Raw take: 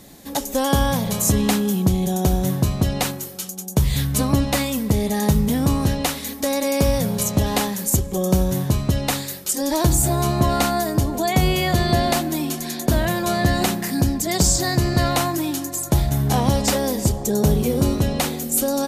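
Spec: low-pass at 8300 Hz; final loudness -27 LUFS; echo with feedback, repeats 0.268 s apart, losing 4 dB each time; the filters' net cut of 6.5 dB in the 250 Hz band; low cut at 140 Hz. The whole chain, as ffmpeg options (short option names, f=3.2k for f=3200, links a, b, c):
-af "highpass=140,lowpass=8.3k,equalizer=f=250:t=o:g=-8,aecho=1:1:268|536|804|1072|1340|1608|1876|2144|2412:0.631|0.398|0.25|0.158|0.0994|0.0626|0.0394|0.0249|0.0157,volume=-5dB"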